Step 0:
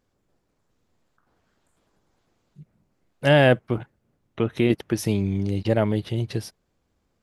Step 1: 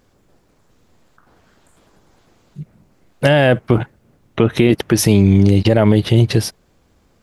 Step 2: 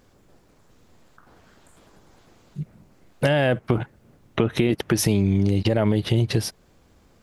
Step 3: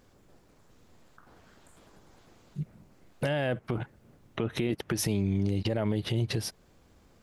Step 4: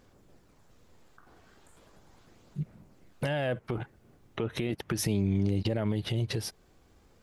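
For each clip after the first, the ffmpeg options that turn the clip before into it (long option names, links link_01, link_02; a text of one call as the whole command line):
ffmpeg -i in.wav -af "alimiter=level_in=16dB:limit=-1dB:release=50:level=0:latency=1,volume=-1dB" out.wav
ffmpeg -i in.wav -af "acompressor=threshold=-20dB:ratio=2.5" out.wav
ffmpeg -i in.wav -af "alimiter=limit=-15.5dB:level=0:latency=1:release=187,volume=-3.5dB" out.wav
ffmpeg -i in.wav -af "aphaser=in_gain=1:out_gain=1:delay=2.7:decay=0.22:speed=0.37:type=sinusoidal,volume=-1.5dB" out.wav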